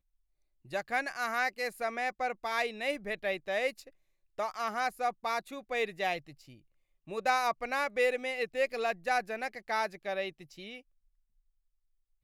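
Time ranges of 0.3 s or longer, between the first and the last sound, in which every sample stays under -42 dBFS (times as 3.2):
3.88–4.39
6.53–7.08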